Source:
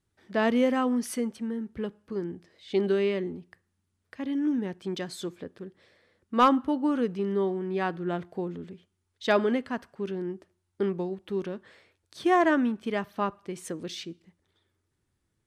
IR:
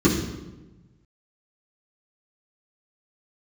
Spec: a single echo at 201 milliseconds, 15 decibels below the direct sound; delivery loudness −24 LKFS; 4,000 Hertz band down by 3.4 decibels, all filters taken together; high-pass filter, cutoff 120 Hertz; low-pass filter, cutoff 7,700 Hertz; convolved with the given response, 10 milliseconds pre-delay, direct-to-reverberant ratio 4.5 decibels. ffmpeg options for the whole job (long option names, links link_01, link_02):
-filter_complex "[0:a]highpass=120,lowpass=7700,equalizer=frequency=4000:width_type=o:gain=-4.5,aecho=1:1:201:0.178,asplit=2[link_01][link_02];[1:a]atrim=start_sample=2205,adelay=10[link_03];[link_02][link_03]afir=irnorm=-1:irlink=0,volume=-22dB[link_04];[link_01][link_04]amix=inputs=2:normalize=0,volume=-4dB"